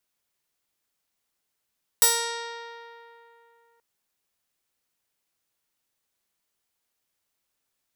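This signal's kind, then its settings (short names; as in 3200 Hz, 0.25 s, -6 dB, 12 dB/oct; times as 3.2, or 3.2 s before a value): plucked string A#4, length 1.78 s, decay 2.94 s, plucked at 0.21, bright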